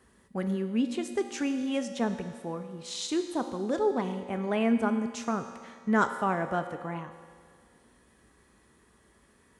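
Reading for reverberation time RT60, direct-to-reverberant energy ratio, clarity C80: 1.9 s, 6.5 dB, 9.0 dB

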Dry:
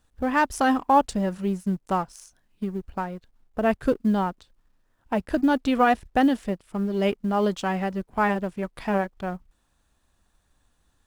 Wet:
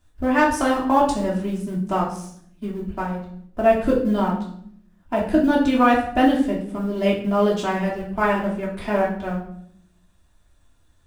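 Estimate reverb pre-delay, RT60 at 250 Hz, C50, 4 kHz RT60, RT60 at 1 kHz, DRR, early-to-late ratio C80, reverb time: 3 ms, 1.1 s, 6.0 dB, 0.50 s, 0.60 s, -5.0 dB, 10.0 dB, 0.65 s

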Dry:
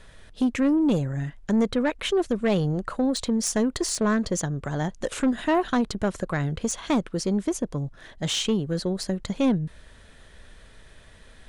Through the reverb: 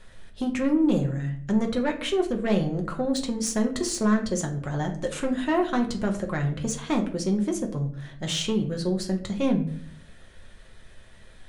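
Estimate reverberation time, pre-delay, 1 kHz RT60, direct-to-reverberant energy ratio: 0.55 s, 6 ms, 0.50 s, 2.0 dB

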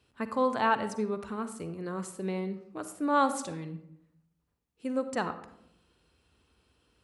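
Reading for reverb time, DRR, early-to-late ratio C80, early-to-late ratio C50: 0.75 s, 10.0 dB, 13.5 dB, 11.0 dB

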